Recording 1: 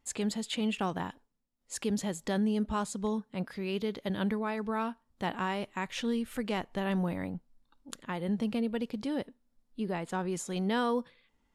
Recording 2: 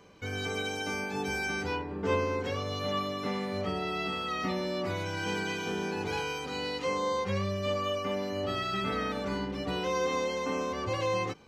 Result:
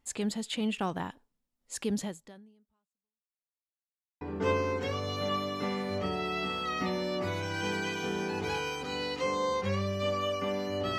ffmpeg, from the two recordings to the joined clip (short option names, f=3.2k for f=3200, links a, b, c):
-filter_complex "[0:a]apad=whole_dur=10.98,atrim=end=10.98,asplit=2[a][b];[a]atrim=end=3.56,asetpts=PTS-STARTPTS,afade=t=out:st=2.03:d=1.53:c=exp[c];[b]atrim=start=3.56:end=4.21,asetpts=PTS-STARTPTS,volume=0[d];[1:a]atrim=start=1.84:end=8.61,asetpts=PTS-STARTPTS,afade=t=in:d=0.004:c=hsin[e];[c][d][e]concat=n=3:v=0:a=1"